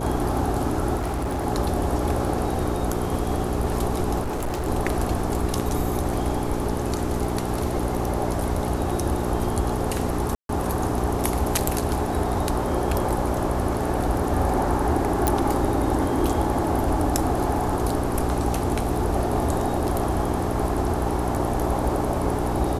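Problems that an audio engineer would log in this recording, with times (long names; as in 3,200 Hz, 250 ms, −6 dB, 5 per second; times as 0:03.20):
mains hum 60 Hz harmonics 7 −28 dBFS
0:00.96–0:01.46: clipping −22.5 dBFS
0:04.21–0:04.68: clipping −23 dBFS
0:10.35–0:10.49: drop-out 142 ms
0:15.27: click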